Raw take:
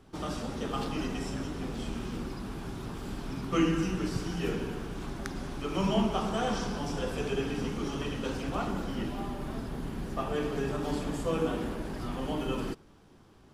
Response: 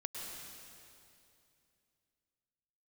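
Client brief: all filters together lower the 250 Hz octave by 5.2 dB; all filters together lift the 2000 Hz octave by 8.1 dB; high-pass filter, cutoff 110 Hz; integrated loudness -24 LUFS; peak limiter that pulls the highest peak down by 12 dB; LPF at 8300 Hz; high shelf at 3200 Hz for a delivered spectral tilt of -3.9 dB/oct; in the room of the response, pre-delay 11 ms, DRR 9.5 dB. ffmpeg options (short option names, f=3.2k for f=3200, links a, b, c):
-filter_complex "[0:a]highpass=110,lowpass=8.3k,equalizer=f=250:t=o:g=-7,equalizer=f=2k:t=o:g=9,highshelf=f=3.2k:g=5.5,alimiter=limit=-22dB:level=0:latency=1,asplit=2[a][b];[1:a]atrim=start_sample=2205,adelay=11[c];[b][c]afir=irnorm=-1:irlink=0,volume=-9.5dB[d];[a][d]amix=inputs=2:normalize=0,volume=10dB"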